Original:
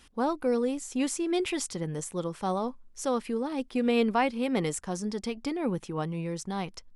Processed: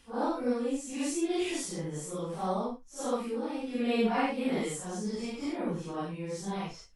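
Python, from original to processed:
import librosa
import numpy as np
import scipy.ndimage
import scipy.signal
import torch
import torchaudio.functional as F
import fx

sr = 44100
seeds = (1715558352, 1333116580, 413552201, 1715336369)

y = fx.phase_scramble(x, sr, seeds[0], window_ms=200)
y = y * librosa.db_to_amplitude(-2.5)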